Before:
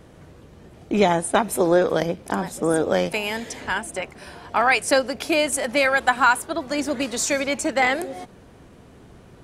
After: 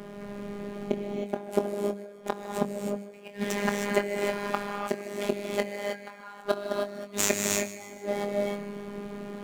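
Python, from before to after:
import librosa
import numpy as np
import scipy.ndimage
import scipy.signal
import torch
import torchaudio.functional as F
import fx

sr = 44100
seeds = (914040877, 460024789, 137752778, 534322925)

y = scipy.signal.medfilt(x, 9)
y = fx.low_shelf(y, sr, hz=270.0, db=6.5)
y = fx.gate_flip(y, sr, shuts_db=-15.0, range_db=-37)
y = scipy.signal.sosfilt(scipy.signal.butter(2, 150.0, 'highpass', fs=sr, output='sos'), y)
y = fx.high_shelf(y, sr, hz=10000.0, db=5.0)
y = fx.doubler(y, sr, ms=24.0, db=-9.5)
y = fx.rev_gated(y, sr, seeds[0], gate_ms=340, shape='rising', drr_db=0.0)
y = fx.robotise(y, sr, hz=203.0)
y = fx.hum_notches(y, sr, base_hz=50, count=4)
y = fx.echo_thinned(y, sr, ms=153, feedback_pct=51, hz=420.0, wet_db=-16.5)
y = np.interp(np.arange(len(y)), np.arange(len(y))[::2], y[::2])
y = y * librosa.db_to_amplitude(8.0)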